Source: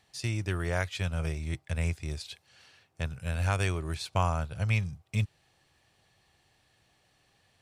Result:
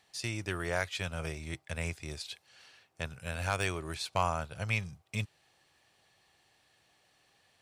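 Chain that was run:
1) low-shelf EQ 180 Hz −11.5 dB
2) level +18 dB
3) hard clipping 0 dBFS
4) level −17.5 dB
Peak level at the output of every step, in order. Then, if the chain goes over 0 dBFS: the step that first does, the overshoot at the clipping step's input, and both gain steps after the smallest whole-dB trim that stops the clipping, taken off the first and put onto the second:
−13.5, +4.5, 0.0, −17.5 dBFS
step 2, 4.5 dB
step 2 +13 dB, step 4 −12.5 dB

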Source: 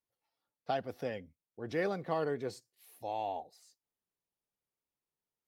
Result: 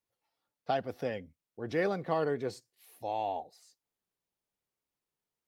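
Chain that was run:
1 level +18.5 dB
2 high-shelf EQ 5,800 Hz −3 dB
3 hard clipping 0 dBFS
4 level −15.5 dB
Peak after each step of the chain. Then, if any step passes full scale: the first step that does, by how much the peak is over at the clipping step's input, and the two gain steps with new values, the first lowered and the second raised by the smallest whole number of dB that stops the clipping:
−2.0, −2.0, −2.0, −17.5 dBFS
no step passes full scale

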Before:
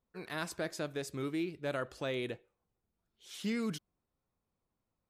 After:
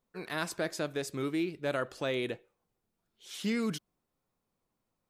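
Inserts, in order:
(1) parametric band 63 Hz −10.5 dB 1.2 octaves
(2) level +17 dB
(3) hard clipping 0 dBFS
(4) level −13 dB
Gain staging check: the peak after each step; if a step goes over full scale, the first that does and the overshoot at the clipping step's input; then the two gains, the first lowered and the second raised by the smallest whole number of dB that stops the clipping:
−21.5, −4.5, −4.5, −17.5 dBFS
no step passes full scale

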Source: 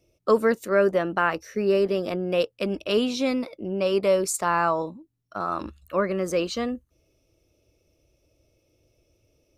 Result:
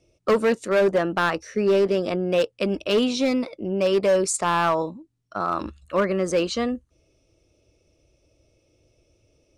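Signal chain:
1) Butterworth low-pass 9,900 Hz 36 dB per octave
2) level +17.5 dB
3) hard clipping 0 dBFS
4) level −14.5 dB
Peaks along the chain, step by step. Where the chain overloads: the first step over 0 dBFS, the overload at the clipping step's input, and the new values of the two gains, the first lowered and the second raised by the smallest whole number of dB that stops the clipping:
−9.5, +8.0, 0.0, −14.5 dBFS
step 2, 8.0 dB
step 2 +9.5 dB, step 4 −6.5 dB

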